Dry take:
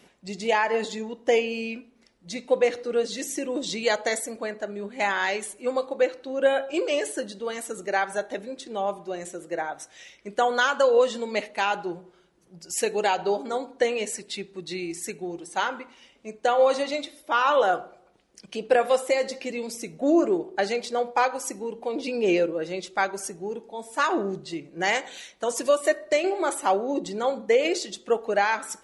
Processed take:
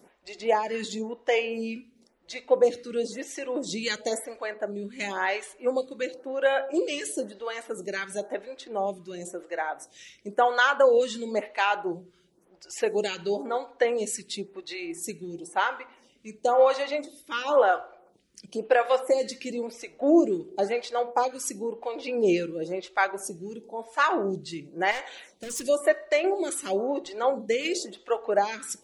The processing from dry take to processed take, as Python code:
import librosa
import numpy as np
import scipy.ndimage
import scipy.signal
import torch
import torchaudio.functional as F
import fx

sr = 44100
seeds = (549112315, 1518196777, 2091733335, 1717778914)

y = fx.clip_hard(x, sr, threshold_db=-29.0, at=(24.91, 25.64))
y = fx.stagger_phaser(y, sr, hz=0.97)
y = y * librosa.db_to_amplitude(1.5)